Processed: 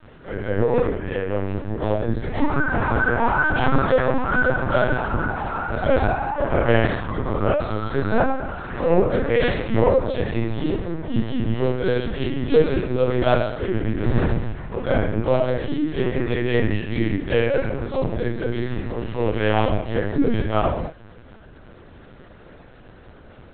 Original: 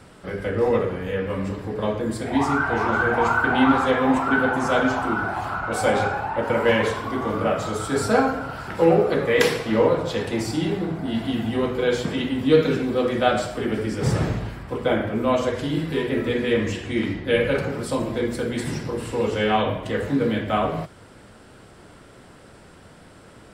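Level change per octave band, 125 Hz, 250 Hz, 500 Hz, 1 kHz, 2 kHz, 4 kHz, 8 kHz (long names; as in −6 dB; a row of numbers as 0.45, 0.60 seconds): +4.0 dB, −0.5 dB, +0.5 dB, −1.0 dB, +0.5 dB, −4.0 dB, below −40 dB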